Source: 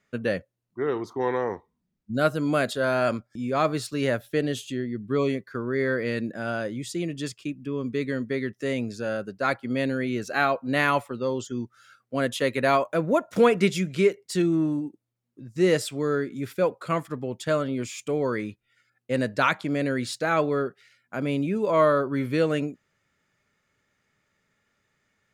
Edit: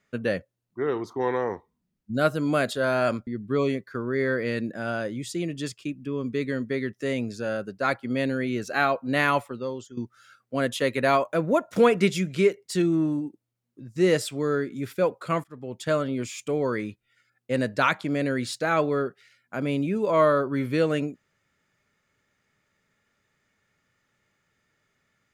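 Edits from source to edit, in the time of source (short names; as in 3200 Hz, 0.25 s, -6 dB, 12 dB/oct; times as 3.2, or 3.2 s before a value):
3.27–4.87 cut
10.98–11.57 fade out, to -13.5 dB
17.04–17.46 fade in linear, from -21 dB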